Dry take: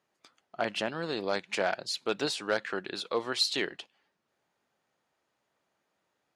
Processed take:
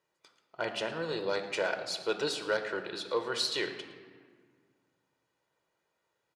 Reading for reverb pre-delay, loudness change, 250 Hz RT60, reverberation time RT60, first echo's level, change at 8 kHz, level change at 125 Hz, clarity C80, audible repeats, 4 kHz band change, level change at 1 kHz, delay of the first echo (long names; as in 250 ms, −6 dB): 3 ms, −1.5 dB, 2.4 s, 1.8 s, −18.5 dB, −2.0 dB, −2.0 dB, 10.0 dB, 1, −2.5 dB, −2.5 dB, 111 ms